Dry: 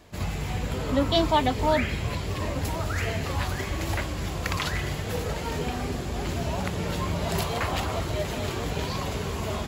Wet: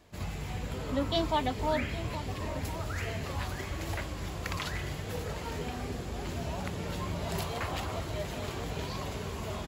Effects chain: echo from a far wall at 140 m, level -12 dB; trim -7 dB

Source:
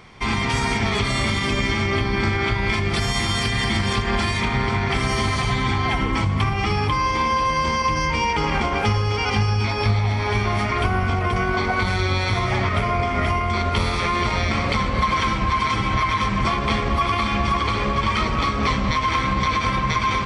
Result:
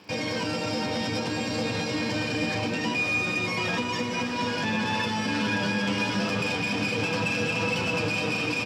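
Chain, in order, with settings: Bessel low-pass 1.6 kHz, order 8; band-stop 830 Hz, Q 12; saturation -18.5 dBFS, distortion -15 dB; crackle 15 per s -36 dBFS; high-pass 47 Hz 24 dB/octave; doubling 24 ms -6 dB; echo that smears into a reverb 1282 ms, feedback 69%, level -8 dB; speed mistake 33 rpm record played at 78 rpm; trim -4.5 dB

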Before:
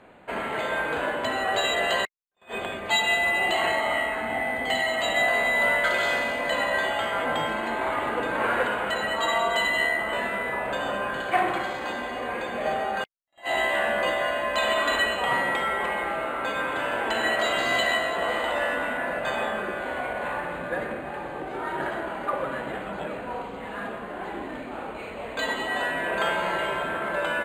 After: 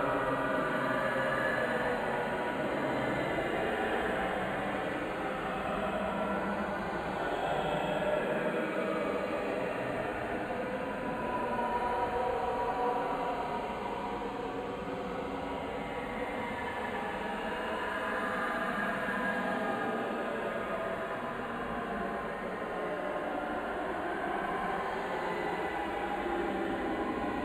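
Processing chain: Paulstretch 14×, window 0.10 s, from 22.47 s

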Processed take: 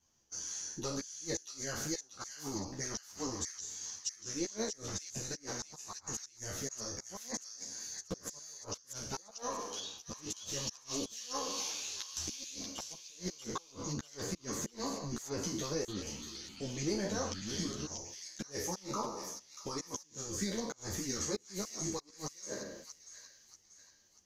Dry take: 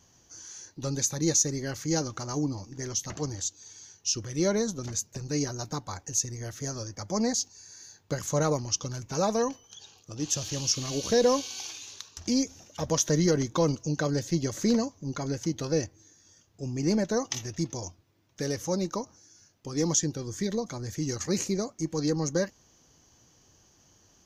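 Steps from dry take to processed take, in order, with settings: spectral sustain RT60 0.81 s; gate -49 dBFS, range -16 dB; treble shelf 4.6 kHz +4 dB; harmonic-percussive split harmonic -8 dB; dynamic bell 1 kHz, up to +3 dB, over -50 dBFS, Q 3.3; compression 2.5:1, threshold -40 dBFS, peak gain reduction 15.5 dB; inverted gate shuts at -27 dBFS, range -34 dB; feedback echo behind a high-pass 637 ms, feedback 43%, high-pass 2.3 kHz, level -5.5 dB; 15.74–17.86 s: ever faster or slower copies 139 ms, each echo -6 st, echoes 2, each echo -6 dB; three-phase chorus; trim +6 dB

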